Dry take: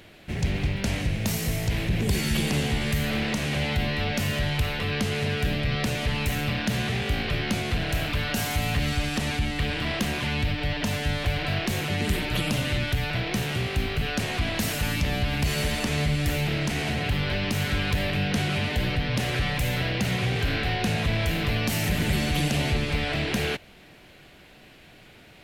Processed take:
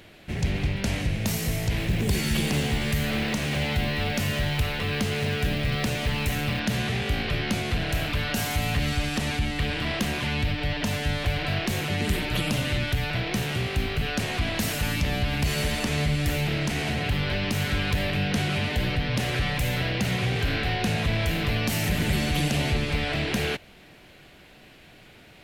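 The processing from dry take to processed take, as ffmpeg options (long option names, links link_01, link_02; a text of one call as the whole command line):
ffmpeg -i in.wav -filter_complex "[0:a]asettb=1/sr,asplit=3[link_01][link_02][link_03];[link_01]atrim=end=1.804[link_04];[link_02]atrim=start=1.8:end=6.6,asetpts=PTS-STARTPTS,afade=type=in:duration=0.004:curve=qsin,afade=type=out:start_time=4.796:duration=0.004:curve=qsin,acrusher=bits=6:mode=log:mix=0:aa=0.000001[link_05];[link_03]atrim=start=6.596[link_06];[link_04][link_05]acrossfade=duration=0.004:curve1=hsin:curve2=qsin[link_07];[link_07][link_06]acrossfade=duration=0.004:curve1=qsin:curve2=hsin" out.wav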